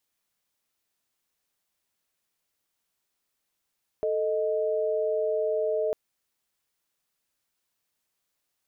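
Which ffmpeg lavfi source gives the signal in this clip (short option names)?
-f lavfi -i "aevalsrc='0.0473*(sin(2*PI*440*t)+sin(2*PI*622.25*t))':d=1.9:s=44100"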